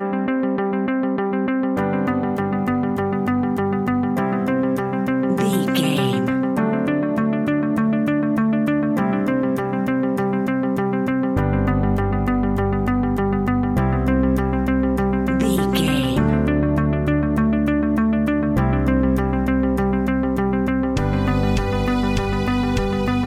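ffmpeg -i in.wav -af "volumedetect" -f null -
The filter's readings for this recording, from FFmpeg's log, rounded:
mean_volume: -19.1 dB
max_volume: -6.3 dB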